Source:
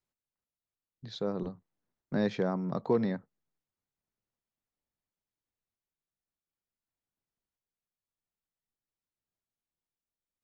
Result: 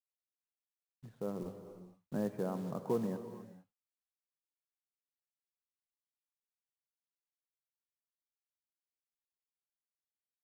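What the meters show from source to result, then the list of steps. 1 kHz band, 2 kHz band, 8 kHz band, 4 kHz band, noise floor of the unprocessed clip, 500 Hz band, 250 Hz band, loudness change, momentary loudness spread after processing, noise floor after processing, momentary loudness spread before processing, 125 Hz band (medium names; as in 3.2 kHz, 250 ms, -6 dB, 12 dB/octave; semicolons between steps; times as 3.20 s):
-6.5 dB, -13.0 dB, no reading, -15.5 dB, under -85 dBFS, -6.0 dB, -6.0 dB, -6.5 dB, 21 LU, under -85 dBFS, 12 LU, -6.0 dB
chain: low-pass 1.4 kHz 24 dB/octave; companded quantiser 6-bit; gated-style reverb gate 490 ms flat, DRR 9 dB; trim -6.5 dB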